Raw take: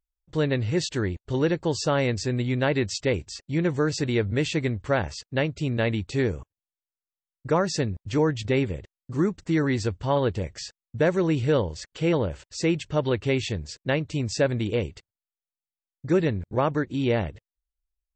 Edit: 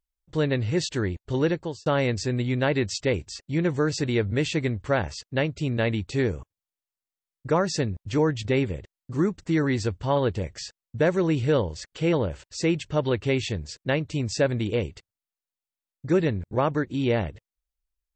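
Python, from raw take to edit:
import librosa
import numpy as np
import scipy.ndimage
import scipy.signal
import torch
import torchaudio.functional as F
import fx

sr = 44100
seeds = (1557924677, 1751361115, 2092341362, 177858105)

y = fx.edit(x, sr, fx.fade_out_span(start_s=1.49, length_s=0.37), tone=tone)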